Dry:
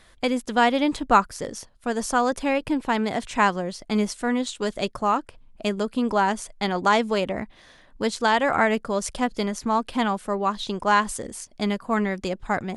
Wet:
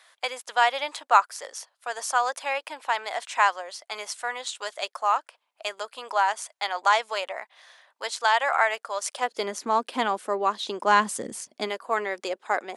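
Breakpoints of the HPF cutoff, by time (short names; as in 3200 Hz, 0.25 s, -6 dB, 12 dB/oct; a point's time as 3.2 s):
HPF 24 dB/oct
9.06 s 660 Hz
9.49 s 300 Hz
10.78 s 300 Hz
11.39 s 110 Hz
11.71 s 400 Hz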